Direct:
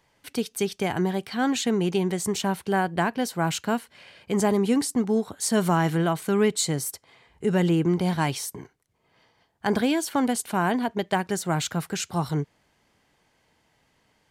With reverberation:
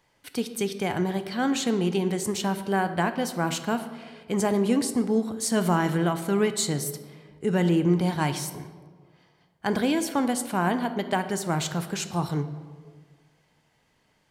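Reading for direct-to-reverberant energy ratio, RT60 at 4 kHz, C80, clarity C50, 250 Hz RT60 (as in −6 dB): 9.0 dB, 0.95 s, 13.0 dB, 11.0 dB, 1.7 s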